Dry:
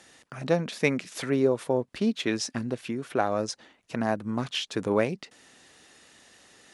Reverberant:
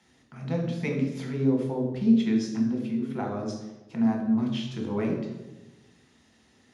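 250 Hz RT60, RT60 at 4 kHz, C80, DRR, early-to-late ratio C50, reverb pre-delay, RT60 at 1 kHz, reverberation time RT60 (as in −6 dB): 1.3 s, 0.75 s, 6.0 dB, −0.5 dB, 4.0 dB, 3 ms, 1.0 s, 1.1 s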